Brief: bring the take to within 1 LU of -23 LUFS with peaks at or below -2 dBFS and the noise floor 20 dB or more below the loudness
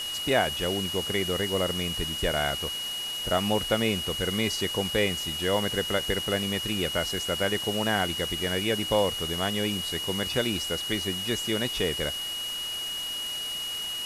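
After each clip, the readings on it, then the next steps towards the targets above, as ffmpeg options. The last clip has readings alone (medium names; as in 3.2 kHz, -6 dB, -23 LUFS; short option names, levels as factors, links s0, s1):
steady tone 2.9 kHz; tone level -31 dBFS; noise floor -33 dBFS; noise floor target -47 dBFS; loudness -27.0 LUFS; peak level -9.5 dBFS; loudness target -23.0 LUFS
-> -af "bandreject=f=2900:w=30"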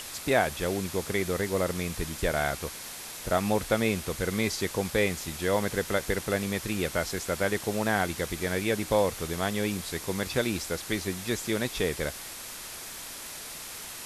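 steady tone not found; noise floor -41 dBFS; noise floor target -50 dBFS
-> -af "afftdn=nr=9:nf=-41"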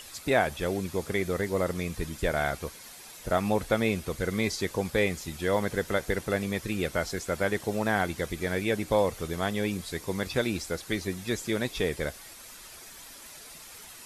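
noise floor -47 dBFS; noise floor target -50 dBFS
-> -af "afftdn=nr=6:nf=-47"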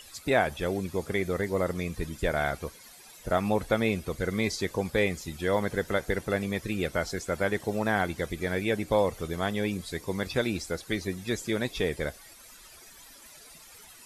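noise floor -51 dBFS; loudness -29.5 LUFS; peak level -11.0 dBFS; loudness target -23.0 LUFS
-> -af "volume=2.11"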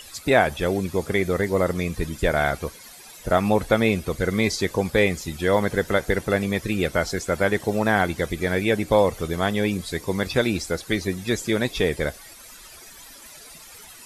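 loudness -23.0 LUFS; peak level -4.5 dBFS; noise floor -45 dBFS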